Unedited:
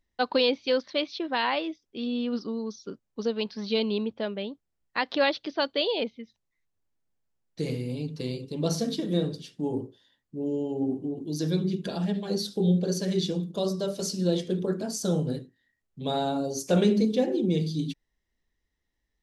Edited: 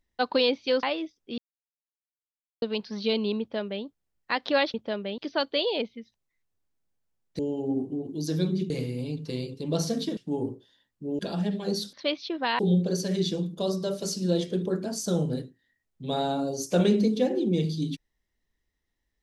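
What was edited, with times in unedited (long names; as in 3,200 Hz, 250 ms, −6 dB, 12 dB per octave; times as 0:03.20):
0:00.83–0:01.49: move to 0:12.56
0:02.04–0:03.28: silence
0:04.06–0:04.50: duplicate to 0:05.40
0:09.08–0:09.49: remove
0:10.51–0:11.82: move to 0:07.61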